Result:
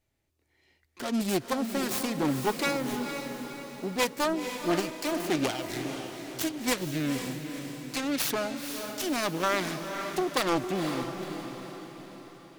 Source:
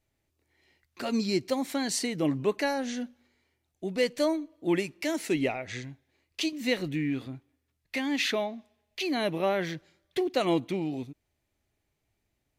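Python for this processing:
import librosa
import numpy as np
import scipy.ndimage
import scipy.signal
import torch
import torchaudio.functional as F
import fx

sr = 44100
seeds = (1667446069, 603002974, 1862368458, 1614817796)

y = fx.self_delay(x, sr, depth_ms=0.64)
y = fx.echo_diffused(y, sr, ms=494, feedback_pct=51, wet_db=-7.0)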